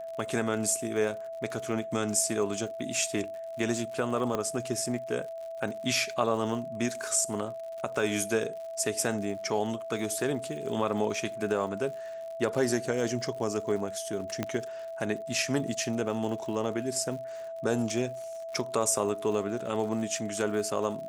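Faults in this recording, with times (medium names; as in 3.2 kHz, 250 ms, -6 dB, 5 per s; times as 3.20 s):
crackle 89 per s -39 dBFS
whine 660 Hz -36 dBFS
4.35 s: pop -17 dBFS
14.43 s: pop -15 dBFS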